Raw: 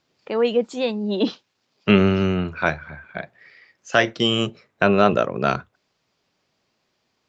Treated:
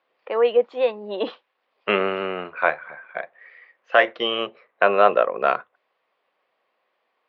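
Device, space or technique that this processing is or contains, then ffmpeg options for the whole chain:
phone earpiece: -filter_complex "[0:a]asettb=1/sr,asplit=3[link_01][link_02][link_03];[link_01]atrim=end=2.004[link_04];[link_02]atrim=start=2:end=3.98,asetpts=PTS-STARTPTS,afade=type=in:duration=0.004:curve=qsin,afade=type=out:start_time=1.976:duration=0.004:curve=qsin,lowpass=5600[link_05];[link_03]atrim=start=3.976[link_06];[link_04][link_05]acrossfade=duration=0.004:curve1=hsin:curve2=qsin[link_07];[link_07][link_06]acrossfade=duration=0.004:curve1=qsin:curve2=hsin,highpass=480,equalizer=frequency=510:width_type=q:width=4:gain=8,equalizer=frequency=730:width_type=q:width=4:gain=4,equalizer=frequency=1100:width_type=q:width=4:gain=7,equalizer=frequency=1900:width_type=q:width=4:gain=4,lowpass=frequency=3200:width=0.5412,lowpass=frequency=3200:width=1.3066,volume=-1.5dB"

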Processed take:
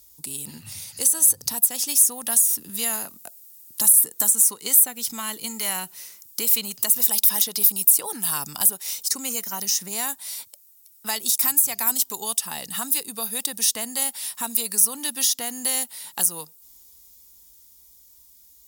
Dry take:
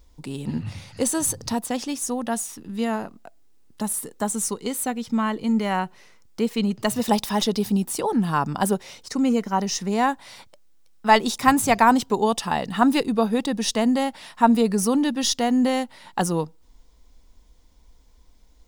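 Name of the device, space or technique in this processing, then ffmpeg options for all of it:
FM broadcast chain: -filter_complex "[0:a]highpass=61,dynaudnorm=framelen=130:gausssize=31:maxgain=8dB,acrossover=split=610|1300|2600[link_01][link_02][link_03][link_04];[link_01]acompressor=threshold=-31dB:ratio=4[link_05];[link_02]acompressor=threshold=-29dB:ratio=4[link_06];[link_03]acompressor=threshold=-33dB:ratio=4[link_07];[link_04]acompressor=threshold=-32dB:ratio=4[link_08];[link_05][link_06][link_07][link_08]amix=inputs=4:normalize=0,aemphasis=mode=production:type=75fm,alimiter=limit=-9dB:level=0:latency=1:release=246,asoftclip=type=hard:threshold=-12.5dB,lowpass=frequency=15000:width=0.5412,lowpass=frequency=15000:width=1.3066,aemphasis=mode=production:type=75fm,volume=-8dB"

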